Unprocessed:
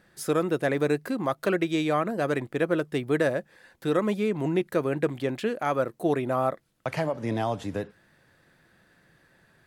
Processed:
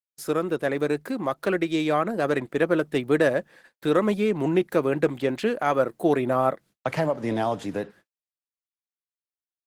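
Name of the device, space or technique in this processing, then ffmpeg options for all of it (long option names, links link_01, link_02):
video call: -filter_complex "[0:a]asplit=3[link_01][link_02][link_03];[link_01]afade=type=out:start_time=6.19:duration=0.02[link_04];[link_02]lowshelf=frequency=150:gain=4,afade=type=in:start_time=6.19:duration=0.02,afade=type=out:start_time=7.13:duration=0.02[link_05];[link_03]afade=type=in:start_time=7.13:duration=0.02[link_06];[link_04][link_05][link_06]amix=inputs=3:normalize=0,highpass=150,dynaudnorm=framelen=750:gausssize=5:maxgain=4dB,agate=range=-57dB:threshold=-48dB:ratio=16:detection=peak" -ar 48000 -c:a libopus -b:a 16k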